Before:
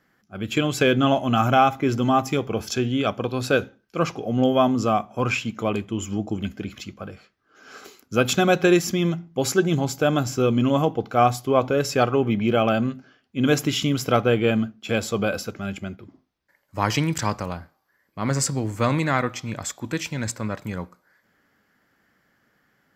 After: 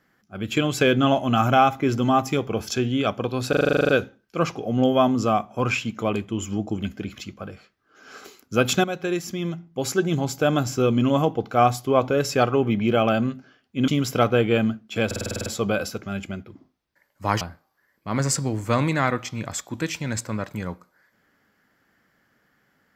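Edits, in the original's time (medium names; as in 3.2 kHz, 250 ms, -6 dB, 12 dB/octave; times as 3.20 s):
3.49 s: stutter 0.04 s, 11 plays
8.44–10.11 s: fade in, from -12 dB
13.48–13.81 s: delete
14.99 s: stutter 0.05 s, 9 plays
16.94–17.52 s: delete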